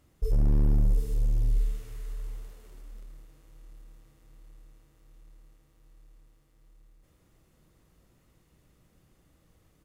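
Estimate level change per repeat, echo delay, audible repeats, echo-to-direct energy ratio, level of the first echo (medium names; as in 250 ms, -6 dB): -6.5 dB, 459 ms, 2, -13.0 dB, -14.0 dB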